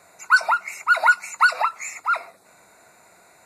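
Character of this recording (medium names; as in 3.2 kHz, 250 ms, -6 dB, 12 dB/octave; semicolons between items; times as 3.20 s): noise floor -54 dBFS; spectral tilt -5.5 dB/octave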